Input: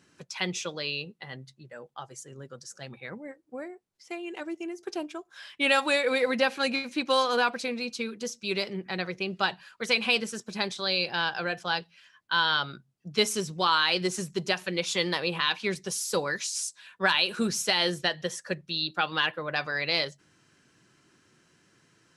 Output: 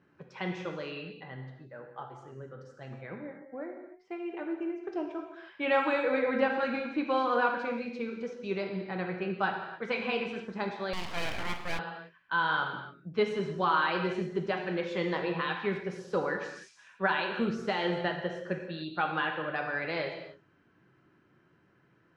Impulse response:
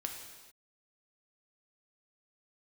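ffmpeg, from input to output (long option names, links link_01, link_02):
-filter_complex "[0:a]lowpass=1600[link_01];[1:a]atrim=start_sample=2205,afade=type=out:start_time=0.36:duration=0.01,atrim=end_sample=16317[link_02];[link_01][link_02]afir=irnorm=-1:irlink=0,asettb=1/sr,asplit=3[link_03][link_04][link_05];[link_03]atrim=end=10.934[link_06];[link_04]atrim=start=10.93:end=11.79,asetpts=PTS-STARTPTS,afade=type=in:duration=0.004:curve=qsin,afade=type=out:start_time=0.856:duration=0.004:curve=qsin,aeval=exprs='abs(val(0))':channel_layout=same[link_07];[link_05]atrim=start=11.786[link_08];[link_06][link_07]acrossfade=duration=0.004:curve1=hsin:curve2=qsin[link_09];[link_09][link_08]acrossfade=duration=0.004:curve1=qsin:curve2=hsin"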